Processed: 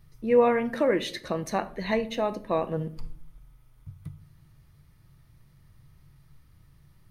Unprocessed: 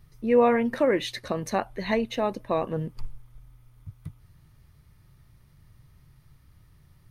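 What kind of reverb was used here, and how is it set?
rectangular room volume 740 cubic metres, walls furnished, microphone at 0.66 metres
level −1.5 dB

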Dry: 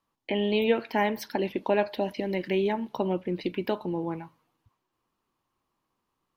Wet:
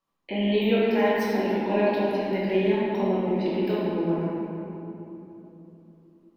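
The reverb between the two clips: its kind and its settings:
rectangular room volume 150 cubic metres, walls hard, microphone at 1.1 metres
level −6 dB

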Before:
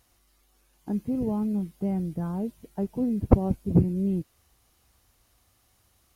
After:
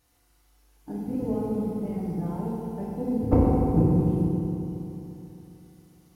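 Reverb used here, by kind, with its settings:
feedback delay network reverb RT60 3.2 s, high-frequency decay 0.55×, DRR −7.5 dB
level −6.5 dB

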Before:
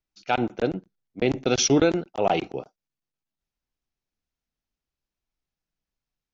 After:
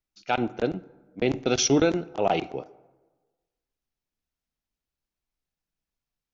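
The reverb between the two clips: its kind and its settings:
dense smooth reverb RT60 1.3 s, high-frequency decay 0.5×, DRR 18 dB
level −1.5 dB

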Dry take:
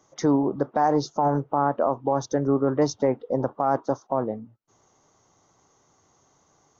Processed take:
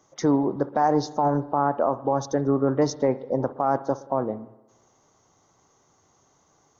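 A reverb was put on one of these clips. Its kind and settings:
spring reverb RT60 1 s, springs 59 ms, chirp 20 ms, DRR 15.5 dB

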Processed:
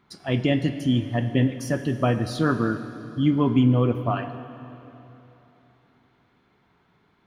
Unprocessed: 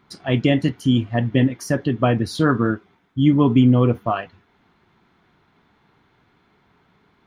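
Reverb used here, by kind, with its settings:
dense smooth reverb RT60 3.3 s, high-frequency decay 0.9×, DRR 9.5 dB
level −4.5 dB

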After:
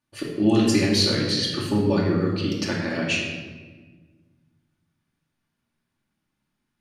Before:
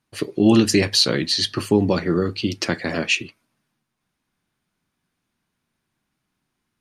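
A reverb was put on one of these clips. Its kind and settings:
rectangular room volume 1,200 cubic metres, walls mixed, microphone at 2.5 metres
level −8 dB

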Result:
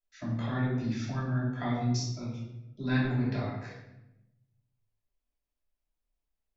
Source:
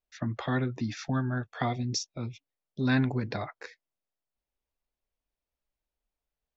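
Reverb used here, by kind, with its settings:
rectangular room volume 320 cubic metres, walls mixed, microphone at 2.9 metres
level −11 dB

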